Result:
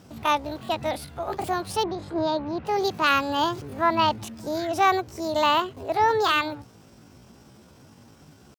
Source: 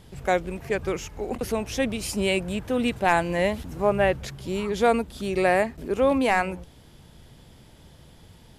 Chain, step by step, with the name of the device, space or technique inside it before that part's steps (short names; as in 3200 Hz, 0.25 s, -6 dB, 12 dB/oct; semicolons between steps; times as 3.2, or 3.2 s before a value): chipmunk voice (pitch shift +8.5 st); HPF 72 Hz; 1.83–2.66 LPF 2500 Hz 12 dB/oct; high shelf 9700 Hz -4.5 dB